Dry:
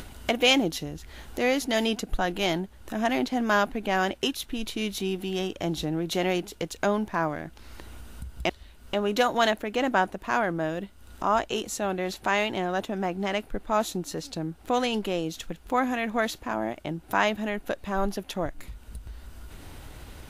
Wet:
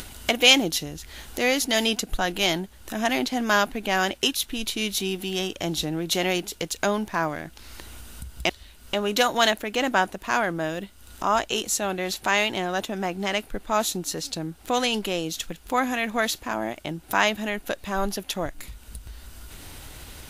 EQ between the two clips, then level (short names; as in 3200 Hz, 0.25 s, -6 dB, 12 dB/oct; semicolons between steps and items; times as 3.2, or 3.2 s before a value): high shelf 2300 Hz +10 dB; 0.0 dB